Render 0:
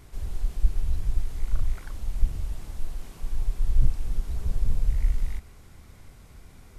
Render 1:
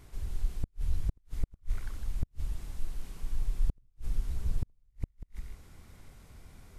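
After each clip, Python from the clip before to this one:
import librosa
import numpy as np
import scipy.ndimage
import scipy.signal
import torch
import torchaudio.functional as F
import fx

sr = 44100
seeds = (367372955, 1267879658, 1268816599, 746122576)

y = fx.dynamic_eq(x, sr, hz=650.0, q=1.1, threshold_db=-57.0, ratio=4.0, max_db=-4)
y = y + 10.0 ** (-9.5 / 20.0) * np.pad(y, (int(156 * sr / 1000.0), 0))[:len(y)]
y = fx.gate_flip(y, sr, shuts_db=-13.0, range_db=-41)
y = y * librosa.db_to_amplitude(-4.0)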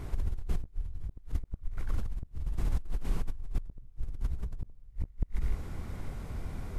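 y = fx.high_shelf(x, sr, hz=2100.0, db=-11.5)
y = fx.over_compress(y, sr, threshold_db=-38.0, ratio=-1.0)
y = y * librosa.db_to_amplitude(7.0)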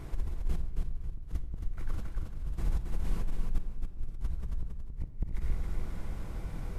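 y = fx.echo_feedback(x, sr, ms=273, feedback_pct=21, wet_db=-5)
y = fx.room_shoebox(y, sr, seeds[0], volume_m3=1800.0, walls='mixed', distance_m=0.7)
y = y * librosa.db_to_amplitude(-2.5)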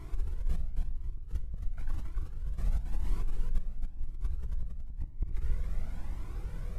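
y = fx.comb_cascade(x, sr, direction='rising', hz=0.97)
y = y * librosa.db_to_amplitude(1.0)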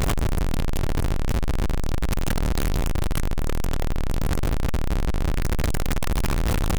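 y = np.sign(x) * np.sqrt(np.mean(np.square(x)))
y = y * librosa.db_to_amplitude(9.0)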